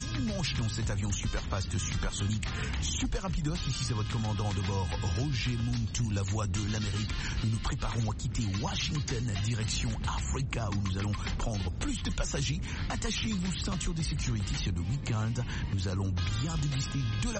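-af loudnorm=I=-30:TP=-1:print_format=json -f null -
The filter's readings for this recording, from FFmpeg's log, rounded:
"input_i" : "-32.5",
"input_tp" : "-18.0",
"input_lra" : "0.7",
"input_thresh" : "-42.5",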